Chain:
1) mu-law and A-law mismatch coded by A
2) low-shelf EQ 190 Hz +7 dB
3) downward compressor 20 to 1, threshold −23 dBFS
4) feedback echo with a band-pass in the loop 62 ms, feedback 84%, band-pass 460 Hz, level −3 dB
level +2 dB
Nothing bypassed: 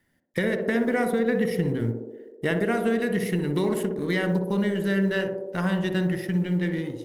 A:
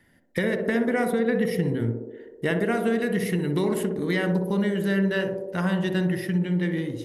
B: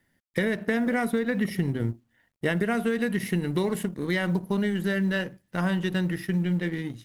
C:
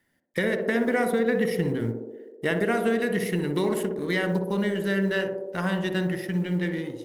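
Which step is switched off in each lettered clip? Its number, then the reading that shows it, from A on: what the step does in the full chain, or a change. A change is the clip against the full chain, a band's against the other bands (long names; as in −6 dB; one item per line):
1, distortion level −25 dB
4, echo-to-direct ratio −5.0 dB to none audible
2, 125 Hz band −3.5 dB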